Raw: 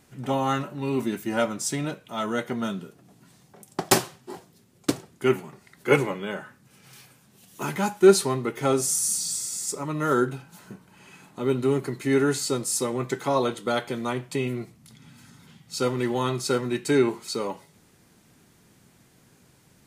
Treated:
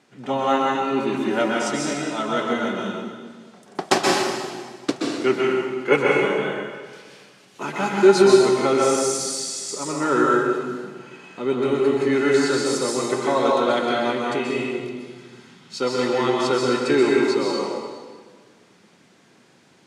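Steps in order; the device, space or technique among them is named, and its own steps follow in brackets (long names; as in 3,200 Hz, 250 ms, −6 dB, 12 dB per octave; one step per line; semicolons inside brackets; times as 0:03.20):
supermarket ceiling speaker (band-pass filter 230–5,300 Hz; convolution reverb RT60 1.6 s, pre-delay 120 ms, DRR −3 dB)
level +2 dB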